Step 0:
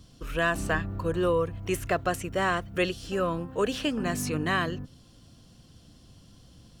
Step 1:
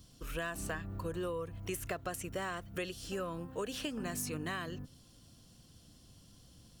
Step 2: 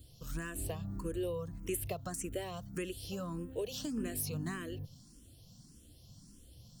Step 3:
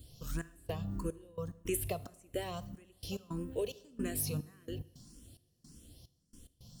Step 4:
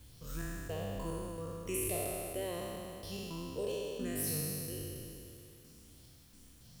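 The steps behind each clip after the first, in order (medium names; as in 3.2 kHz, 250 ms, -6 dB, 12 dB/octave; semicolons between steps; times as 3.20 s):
treble shelf 7 kHz +11.5 dB; compression, threshold -28 dBFS, peak gain reduction 8 dB; trim -6.5 dB
peaking EQ 1.4 kHz -10.5 dB 2.5 oct; barber-pole phaser +1.7 Hz; trim +6 dB
trance gate "xxx..xxx..x." 109 bpm -24 dB; reverberation, pre-delay 3 ms, DRR 16 dB; trim +2 dB
spectral sustain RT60 2.75 s; added noise white -60 dBFS; trim -6 dB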